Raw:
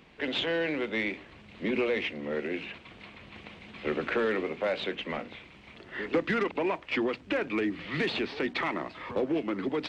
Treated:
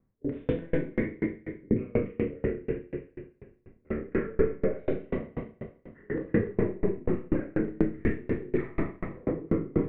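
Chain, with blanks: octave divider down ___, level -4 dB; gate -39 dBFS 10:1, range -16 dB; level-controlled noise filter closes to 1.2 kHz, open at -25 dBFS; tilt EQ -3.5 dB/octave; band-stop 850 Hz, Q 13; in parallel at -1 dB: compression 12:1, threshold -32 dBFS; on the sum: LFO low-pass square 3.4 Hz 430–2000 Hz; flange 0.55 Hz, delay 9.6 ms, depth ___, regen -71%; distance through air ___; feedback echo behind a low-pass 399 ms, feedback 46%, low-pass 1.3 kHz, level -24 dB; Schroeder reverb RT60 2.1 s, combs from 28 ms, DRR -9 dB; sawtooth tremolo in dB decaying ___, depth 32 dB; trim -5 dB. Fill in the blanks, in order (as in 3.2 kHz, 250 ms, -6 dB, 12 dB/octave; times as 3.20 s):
1 oct, 2.3 ms, 360 m, 4.1 Hz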